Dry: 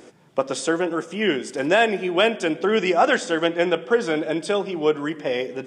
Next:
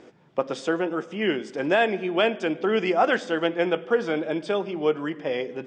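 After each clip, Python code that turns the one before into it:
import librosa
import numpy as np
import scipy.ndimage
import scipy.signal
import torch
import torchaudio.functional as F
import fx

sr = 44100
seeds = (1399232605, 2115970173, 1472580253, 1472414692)

y = fx.air_absorb(x, sr, metres=130.0)
y = F.gain(torch.from_numpy(y), -2.5).numpy()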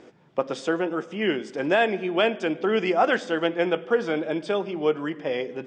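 y = x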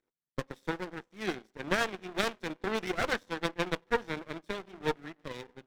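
y = fx.lower_of_two(x, sr, delay_ms=0.53)
y = fx.power_curve(y, sr, exponent=2.0)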